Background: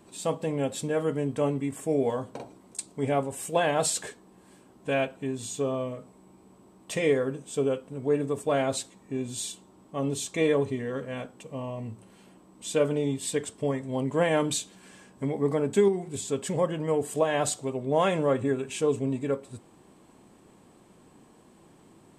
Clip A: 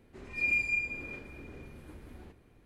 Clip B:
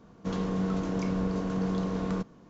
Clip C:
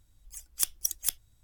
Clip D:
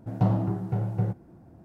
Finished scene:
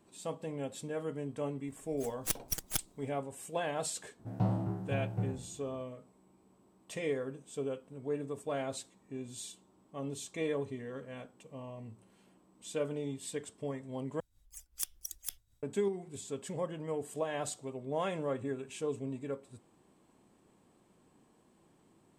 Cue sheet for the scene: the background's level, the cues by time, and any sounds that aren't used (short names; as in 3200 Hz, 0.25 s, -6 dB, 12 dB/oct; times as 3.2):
background -10.5 dB
1.67 add C -4 dB + minimum comb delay 6.3 ms
4.19 add D -9 dB + spectral trails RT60 0.54 s
14.2 replace with C -5.5 dB + tremolo 5.2 Hz, depth 61%
not used: A, B